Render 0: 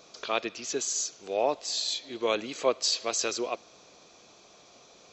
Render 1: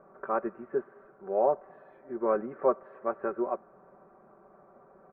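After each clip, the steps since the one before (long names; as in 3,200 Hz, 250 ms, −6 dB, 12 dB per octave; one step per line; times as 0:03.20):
Butterworth low-pass 1,600 Hz 48 dB per octave
comb filter 5.2 ms, depth 70%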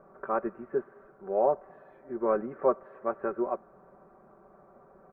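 low-shelf EQ 100 Hz +8 dB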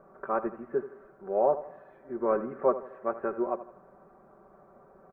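repeating echo 81 ms, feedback 40%, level −13.5 dB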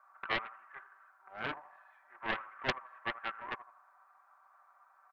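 inverse Chebyshev high-pass filter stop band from 490 Hz, stop band 40 dB
highs frequency-modulated by the lows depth 0.63 ms
level +1 dB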